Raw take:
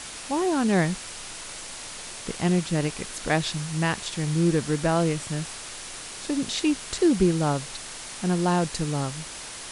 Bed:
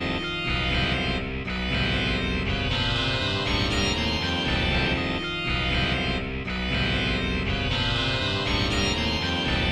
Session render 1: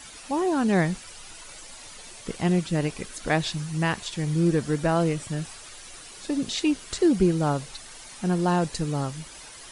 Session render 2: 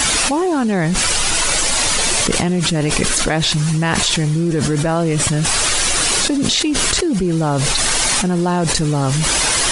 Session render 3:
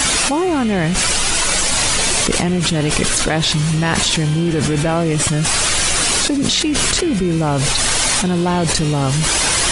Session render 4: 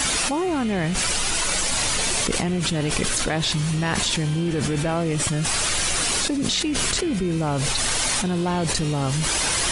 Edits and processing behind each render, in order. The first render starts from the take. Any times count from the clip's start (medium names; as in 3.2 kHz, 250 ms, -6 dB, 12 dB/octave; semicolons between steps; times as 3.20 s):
noise reduction 10 dB, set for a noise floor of -39 dBFS
level flattener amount 100%
add bed -5 dB
trim -6.5 dB